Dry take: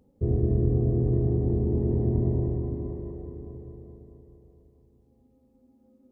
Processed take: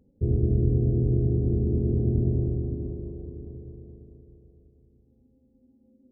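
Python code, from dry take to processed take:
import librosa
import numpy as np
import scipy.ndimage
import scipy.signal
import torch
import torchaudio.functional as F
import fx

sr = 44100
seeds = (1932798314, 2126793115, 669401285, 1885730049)

y = scipy.ndimage.gaussian_filter1d(x, 15.0, mode='constant')
y = y * 10.0 ** (1.5 / 20.0)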